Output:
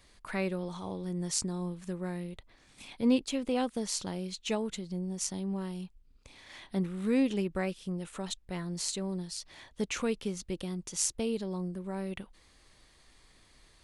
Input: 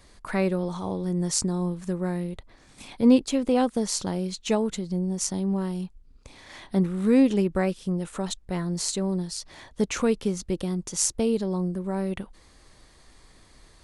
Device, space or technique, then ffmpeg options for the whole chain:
presence and air boost: -af "equalizer=f=2.8k:t=o:w=1.4:g=6,highshelf=f=9.8k:g=5,volume=-8.5dB"

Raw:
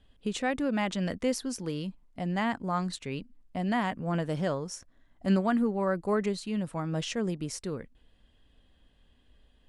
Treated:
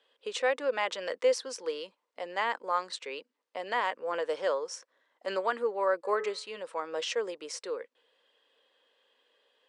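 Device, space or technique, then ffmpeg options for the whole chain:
phone speaker on a table: -filter_complex "[0:a]asplit=3[a][b][c];[a]afade=t=out:st=6.03:d=0.02[d];[b]bandreject=f=142.4:t=h:w=4,bandreject=f=284.8:t=h:w=4,bandreject=f=427.2:t=h:w=4,bandreject=f=569.6:t=h:w=4,bandreject=f=712:t=h:w=4,bandreject=f=854.4:t=h:w=4,bandreject=f=996.8:t=h:w=4,bandreject=f=1.1392k:t=h:w=4,bandreject=f=1.2816k:t=h:w=4,bandreject=f=1.424k:t=h:w=4,bandreject=f=1.5664k:t=h:w=4,bandreject=f=1.7088k:t=h:w=4,bandreject=f=1.8512k:t=h:w=4,bandreject=f=1.9936k:t=h:w=4,bandreject=f=2.136k:t=h:w=4,bandreject=f=2.2784k:t=h:w=4,bandreject=f=2.4208k:t=h:w=4,bandreject=f=2.5632k:t=h:w=4,bandreject=f=2.7056k:t=h:w=4,afade=t=in:st=6.03:d=0.02,afade=t=out:st=6.56:d=0.02[e];[c]afade=t=in:st=6.56:d=0.02[f];[d][e][f]amix=inputs=3:normalize=0,highpass=f=470:w=0.5412,highpass=f=470:w=1.3066,equalizer=f=490:t=q:w=4:g=8,equalizer=f=700:t=q:w=4:g=-7,equalizer=f=1k:t=q:w=4:g=3,equalizer=f=6.8k:t=q:w=4:g=-4,lowpass=f=8k:w=0.5412,lowpass=f=8k:w=1.3066,volume=2dB"

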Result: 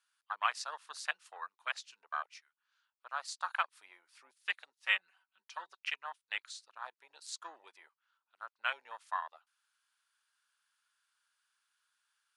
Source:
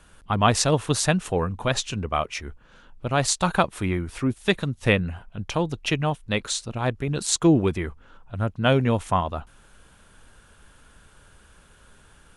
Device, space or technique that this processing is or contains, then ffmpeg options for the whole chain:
headphones lying on a table: -filter_complex "[0:a]afwtdn=0.0447,asettb=1/sr,asplit=3[a][b][c];[a]atrim=end=4.824[d];[b]atrim=start=4.82:end=5.78,asetpts=PTS-STARTPTS,afade=t=in:d=0.004:c=qsin,afade=t=out:st=0.956:d=0.004:c=qsin,aecho=1:1:5.3:0.73,atrim=end_sample=42336[e];[c]atrim=start=5.776[f];[d][e]acrossfade=d=0.004:c1=hsin:c2=qsin[g];[g][f]acrossfade=d=0.004:c1=qsin:c2=hsin,highpass=f=1.1k:w=0.5412,highpass=f=1.1k:w=1.3066,equalizer=f=4.7k:t=o:w=0.52:g=8,volume=-7dB"

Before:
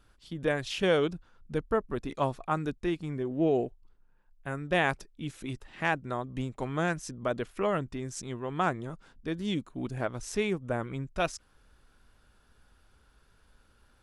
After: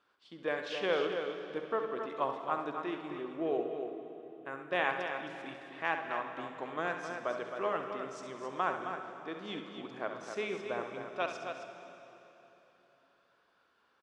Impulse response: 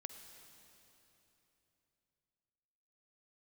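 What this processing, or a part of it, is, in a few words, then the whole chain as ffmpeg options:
station announcement: -filter_complex "[0:a]highpass=370,lowpass=4.1k,equalizer=f=1.1k:t=o:w=0.22:g=5.5,aecho=1:1:67.06|265.3:0.355|0.398[a];[1:a]atrim=start_sample=2205[b];[a][b]afir=irnorm=-1:irlink=0"

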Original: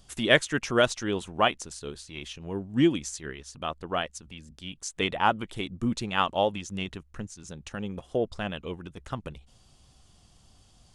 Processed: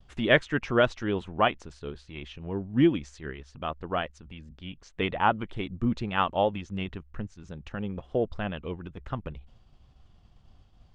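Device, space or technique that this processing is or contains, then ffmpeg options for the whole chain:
hearing-loss simulation: -filter_complex "[0:a]asettb=1/sr,asplit=3[a][b][c];[a]atrim=end=4.534[d];[b]atrim=start=4.53:end=5.26,asetpts=PTS-STARTPTS,afade=t=in:d=0.004:c=qsin,afade=t=out:st=0.726:d=0.004:c=qsin,lowpass=5.6k[e];[c]atrim=start=5.256[f];[d][e]acrossfade=d=0.004:c1=hsin:c2=qsin[g];[g][f]acrossfade=d=0.004:c1=qsin:c2=hsin,lowpass=2.7k,agate=range=-33dB:threshold=-55dB:ratio=3:detection=peak,lowshelf=f=83:g=7.5"

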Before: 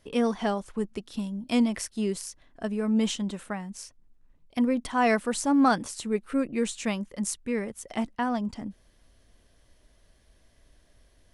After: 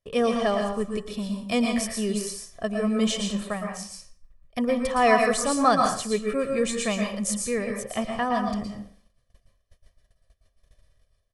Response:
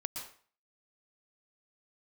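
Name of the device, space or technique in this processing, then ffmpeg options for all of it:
microphone above a desk: -filter_complex "[0:a]agate=range=-25dB:threshold=-55dB:ratio=16:detection=peak,aecho=1:1:1.7:0.62[a];[1:a]atrim=start_sample=2205[b];[a][b]afir=irnorm=-1:irlink=0,volume=3.5dB"

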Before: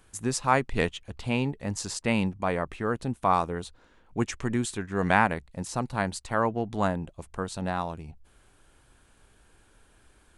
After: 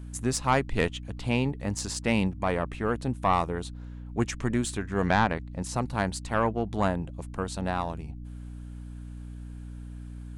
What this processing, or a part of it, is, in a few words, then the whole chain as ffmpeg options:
valve amplifier with mains hum: -filter_complex "[0:a]aeval=exprs='(tanh(5.01*val(0)+0.35)-tanh(0.35))/5.01':c=same,aeval=exprs='val(0)+0.01*(sin(2*PI*60*n/s)+sin(2*PI*2*60*n/s)/2+sin(2*PI*3*60*n/s)/3+sin(2*PI*4*60*n/s)/4+sin(2*PI*5*60*n/s)/5)':c=same,asettb=1/sr,asplit=3[a][b][c];[a]atrim=end=5.064[d];[b]atrim=start=5.06:end=5.62,asetpts=PTS-STARTPTS,afade=t=in:d=0.004:c=qsin,afade=t=out:st=0.556:d=0.004:c=qsin,lowpass=5.9k[e];[c]atrim=start=5.616[f];[d][e]acrossfade=d=0.004:c1=hsin:c2=qsin[g];[g][f]acrossfade=d=0.004:c1=qsin:c2=hsin,volume=1.5dB"

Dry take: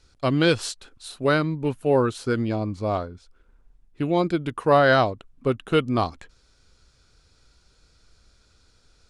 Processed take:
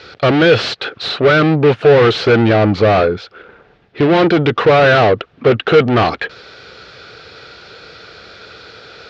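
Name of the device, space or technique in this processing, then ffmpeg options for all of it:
overdrive pedal into a guitar cabinet: -filter_complex "[0:a]asplit=2[a][b];[b]highpass=f=720:p=1,volume=37dB,asoftclip=type=tanh:threshold=-5.5dB[c];[a][c]amix=inputs=2:normalize=0,lowpass=f=2.2k:p=1,volume=-6dB,highpass=85,equalizer=f=110:t=q:w=4:g=3,equalizer=f=260:t=q:w=4:g=-6,equalizer=f=450:t=q:w=4:g=5,equalizer=f=1k:t=q:w=4:g=-8,lowpass=f=4.4k:w=0.5412,lowpass=f=4.4k:w=1.3066,volume=2.5dB"

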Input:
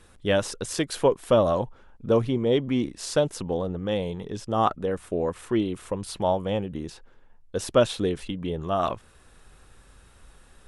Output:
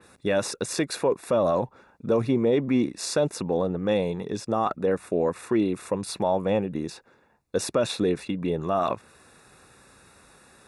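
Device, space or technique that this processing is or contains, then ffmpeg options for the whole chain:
PA system with an anti-feedback notch: -af "highpass=140,asuperstop=centerf=3100:order=8:qfactor=5.9,alimiter=limit=-17.5dB:level=0:latency=1:release=30,adynamicequalizer=threshold=0.00447:dfrequency=3600:dqfactor=0.7:tfrequency=3600:tqfactor=0.7:attack=5:release=100:ratio=0.375:range=2.5:mode=cutabove:tftype=highshelf,volume=4dB"

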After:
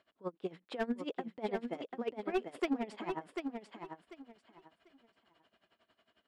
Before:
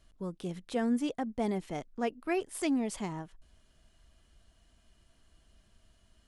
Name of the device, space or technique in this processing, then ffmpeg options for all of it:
helicopter radio: -filter_complex "[0:a]asettb=1/sr,asplit=3[a][b][c];[a]atrim=end=0.864[d];[b]atrim=start=0.86:end=2.32,asetpts=PTS-STARTPTS,afade=t=in:d=0.004:c=qsin,afade=t=out:st=1.456:d=0.004:c=qsin,equalizer=f=1.1k:w=0.49:g=-4.5[e];[c]atrim=start=2.316[f];[d][e]acrossfade=d=0.004:c1=hsin:c2=qsin[g];[g][f]acrossfade=d=0.004:c1=qsin:c2=hsin,highpass=360,lowpass=2.7k,bandreject=f=6.1k:w=5.9,aeval=exprs='val(0)*pow(10,-21*(0.5-0.5*cos(2*PI*11*n/s))/20)':c=same,asoftclip=type=hard:threshold=-32.5dB,aecho=1:1:743|1486|2229:0.501|0.11|0.0243,volume=6.5dB"

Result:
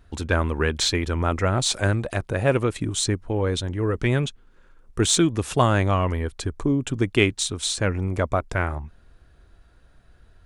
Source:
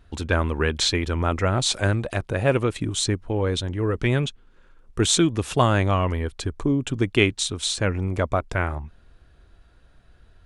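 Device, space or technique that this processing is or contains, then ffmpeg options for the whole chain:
exciter from parts: -filter_complex "[0:a]asplit=2[a][b];[b]highpass=f=3.5k:p=1,asoftclip=type=tanh:threshold=-20.5dB,highpass=f=2.2k:w=0.5412,highpass=f=2.2k:w=1.3066,volume=-9dB[c];[a][c]amix=inputs=2:normalize=0"

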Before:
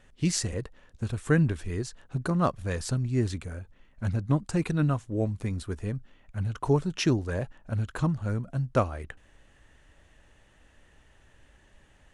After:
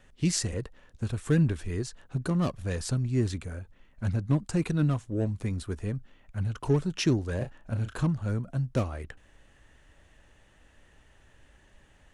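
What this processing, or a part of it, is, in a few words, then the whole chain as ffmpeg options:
one-band saturation: -filter_complex "[0:a]acrossover=split=470|2600[a][b][c];[b]asoftclip=type=tanh:threshold=-35dB[d];[a][d][c]amix=inputs=3:normalize=0,asettb=1/sr,asplit=3[e][f][g];[e]atrim=end=7.374[h];[f]atrim=start=7.37:end=8.03,asetpts=PTS-STARTPTS,afade=t=in:d=0.004:c=qsin,afade=t=out:st=0.656:d=0.004:c=qsin,asplit=2[i][j];[j]adelay=34,volume=-8.5dB[k];[i][k]amix=inputs=2:normalize=0,atrim=end_sample=29106[l];[g]atrim=start=8.026[m];[h][l]acrossfade=d=0.004:c1=hsin:c2=qsin[n];[n][m]acrossfade=d=0.004:c1=qsin:c2=hsin"

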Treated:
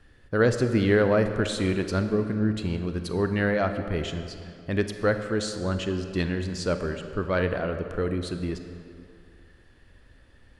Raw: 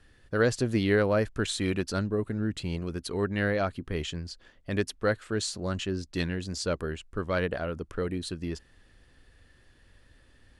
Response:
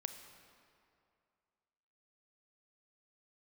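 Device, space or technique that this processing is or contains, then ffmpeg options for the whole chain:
swimming-pool hall: -filter_complex "[1:a]atrim=start_sample=2205[a];[0:a][a]afir=irnorm=-1:irlink=0,highshelf=f=3.5k:g=-7,volume=6dB"

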